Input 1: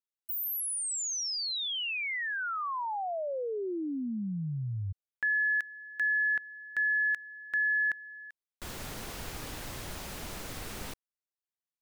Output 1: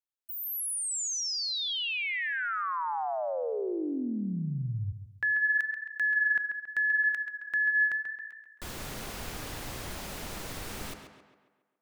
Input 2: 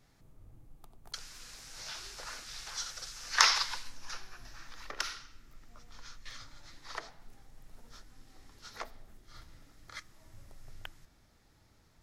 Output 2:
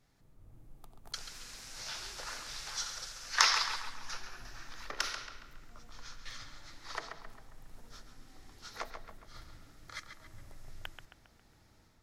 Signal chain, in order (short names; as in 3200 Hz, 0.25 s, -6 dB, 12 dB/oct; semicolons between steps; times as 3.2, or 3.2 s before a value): AGC gain up to 6 dB; on a send: tape echo 0.136 s, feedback 53%, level -6.5 dB, low-pass 3700 Hz; on the sum: gain -5 dB